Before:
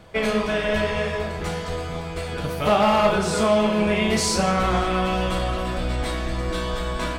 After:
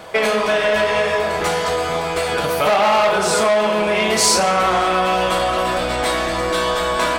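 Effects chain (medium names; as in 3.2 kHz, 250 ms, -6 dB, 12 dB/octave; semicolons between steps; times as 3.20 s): peaking EQ 700 Hz +9.5 dB 2.7 oct; saturation -8.5 dBFS, distortion -14 dB; compression 3:1, threshold -21 dBFS, peak gain reduction 8 dB; tilt EQ +2.5 dB/octave; trim +6.5 dB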